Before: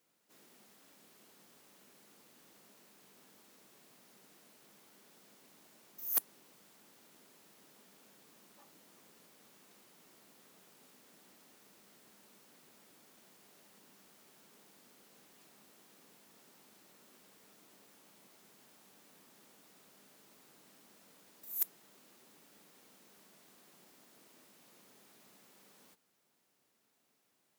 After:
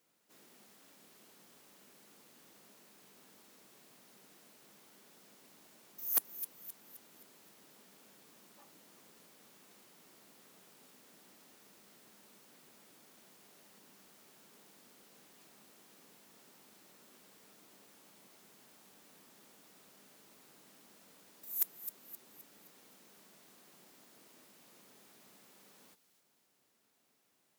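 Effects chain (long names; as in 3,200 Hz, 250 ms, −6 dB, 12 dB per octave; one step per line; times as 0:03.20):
delay with a high-pass on its return 261 ms, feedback 44%, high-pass 2,900 Hz, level −11 dB
level +1 dB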